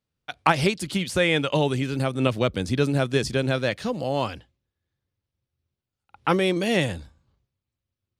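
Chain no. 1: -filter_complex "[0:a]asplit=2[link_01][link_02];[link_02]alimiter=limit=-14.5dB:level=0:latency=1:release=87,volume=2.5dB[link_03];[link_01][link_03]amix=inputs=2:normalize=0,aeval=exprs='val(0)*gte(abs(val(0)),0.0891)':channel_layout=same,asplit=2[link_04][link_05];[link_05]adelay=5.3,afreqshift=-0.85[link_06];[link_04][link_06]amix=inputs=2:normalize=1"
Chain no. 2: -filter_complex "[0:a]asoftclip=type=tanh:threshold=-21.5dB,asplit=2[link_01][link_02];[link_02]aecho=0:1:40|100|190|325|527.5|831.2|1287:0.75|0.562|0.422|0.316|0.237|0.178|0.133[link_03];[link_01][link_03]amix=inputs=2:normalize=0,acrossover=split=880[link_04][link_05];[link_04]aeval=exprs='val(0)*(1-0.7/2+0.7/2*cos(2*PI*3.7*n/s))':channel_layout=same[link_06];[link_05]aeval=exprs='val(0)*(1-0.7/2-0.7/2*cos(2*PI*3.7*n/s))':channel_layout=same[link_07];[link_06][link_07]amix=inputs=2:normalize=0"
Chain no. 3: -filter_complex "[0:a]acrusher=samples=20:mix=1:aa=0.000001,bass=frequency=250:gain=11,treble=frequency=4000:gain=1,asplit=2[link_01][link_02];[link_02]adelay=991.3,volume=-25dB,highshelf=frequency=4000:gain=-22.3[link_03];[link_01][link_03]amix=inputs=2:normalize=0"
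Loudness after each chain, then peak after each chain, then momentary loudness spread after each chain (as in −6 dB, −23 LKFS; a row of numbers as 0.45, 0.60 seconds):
−21.5, −28.5, −19.5 LKFS; −2.0, −13.5, −1.5 dBFS; 7, 17, 7 LU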